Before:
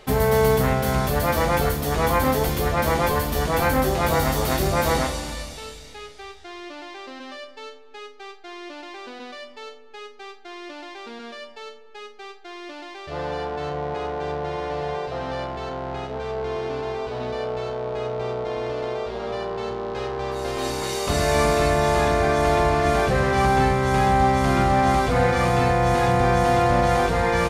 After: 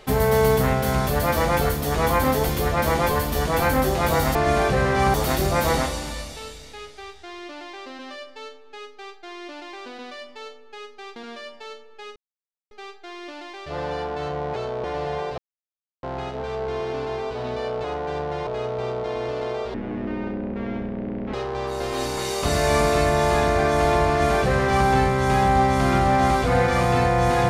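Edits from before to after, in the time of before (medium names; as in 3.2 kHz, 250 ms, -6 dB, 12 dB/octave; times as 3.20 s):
10.37–11.12 s: delete
12.12 s: insert silence 0.55 s
13.97–14.60 s: swap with 17.60–17.88 s
15.14–15.79 s: mute
19.15–19.98 s: speed 52%
22.73–23.52 s: copy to 4.35 s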